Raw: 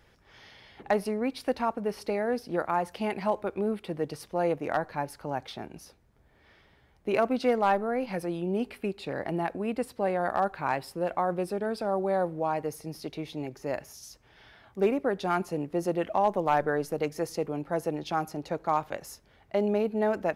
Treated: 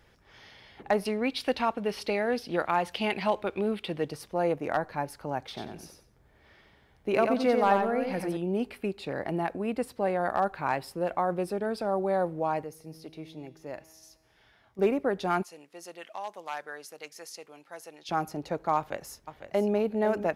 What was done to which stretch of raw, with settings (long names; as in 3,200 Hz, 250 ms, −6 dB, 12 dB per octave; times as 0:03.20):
0:01.05–0:04.09: parametric band 3,200 Hz +11 dB 1.3 octaves
0:05.43–0:08.37: repeating echo 91 ms, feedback 22%, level −5 dB
0:12.64–0:14.79: tuned comb filter 160 Hz, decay 1.9 s
0:15.43–0:18.09: resonant band-pass 6,100 Hz, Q 0.51
0:18.77–0:19.76: delay throw 500 ms, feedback 25%, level −10.5 dB